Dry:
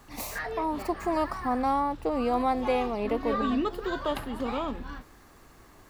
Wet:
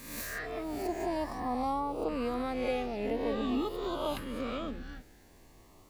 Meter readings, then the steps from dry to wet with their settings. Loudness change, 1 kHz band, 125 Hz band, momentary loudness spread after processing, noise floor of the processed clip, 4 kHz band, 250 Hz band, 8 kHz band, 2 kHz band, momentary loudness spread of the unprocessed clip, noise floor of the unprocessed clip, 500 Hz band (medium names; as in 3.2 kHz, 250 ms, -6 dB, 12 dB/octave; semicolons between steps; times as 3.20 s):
-5.5 dB, -7.5 dB, -3.5 dB, 6 LU, -58 dBFS, -2.5 dB, -4.5 dB, no reading, -4.5 dB, 8 LU, -54 dBFS, -4.0 dB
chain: reverse spectral sustain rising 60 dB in 0.87 s; LFO notch saw up 0.48 Hz 750–1900 Hz; trim -5.5 dB